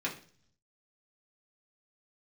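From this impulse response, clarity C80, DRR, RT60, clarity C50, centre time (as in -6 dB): 15.5 dB, -4.5 dB, 0.45 s, 11.0 dB, 17 ms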